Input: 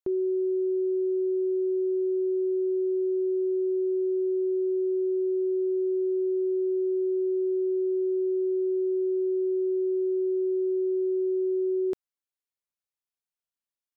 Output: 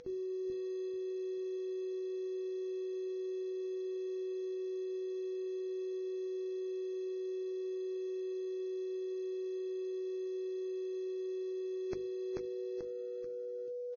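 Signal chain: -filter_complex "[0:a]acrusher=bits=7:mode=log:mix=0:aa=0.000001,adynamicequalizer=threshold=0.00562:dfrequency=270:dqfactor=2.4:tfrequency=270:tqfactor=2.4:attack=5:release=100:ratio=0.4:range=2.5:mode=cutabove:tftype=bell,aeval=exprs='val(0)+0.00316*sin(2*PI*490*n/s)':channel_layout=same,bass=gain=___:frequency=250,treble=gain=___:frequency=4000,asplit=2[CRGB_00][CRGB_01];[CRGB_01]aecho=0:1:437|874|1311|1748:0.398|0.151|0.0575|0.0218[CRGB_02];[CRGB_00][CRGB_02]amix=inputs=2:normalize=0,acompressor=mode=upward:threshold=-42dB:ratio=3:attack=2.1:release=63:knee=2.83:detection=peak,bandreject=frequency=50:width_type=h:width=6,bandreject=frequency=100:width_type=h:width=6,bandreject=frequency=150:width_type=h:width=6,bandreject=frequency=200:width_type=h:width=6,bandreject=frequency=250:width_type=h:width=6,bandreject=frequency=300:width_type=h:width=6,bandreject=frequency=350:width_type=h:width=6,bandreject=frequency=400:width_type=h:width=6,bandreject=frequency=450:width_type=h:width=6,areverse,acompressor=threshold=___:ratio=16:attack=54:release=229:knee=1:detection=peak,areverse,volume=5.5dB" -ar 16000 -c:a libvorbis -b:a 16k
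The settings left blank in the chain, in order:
8, 6, -44dB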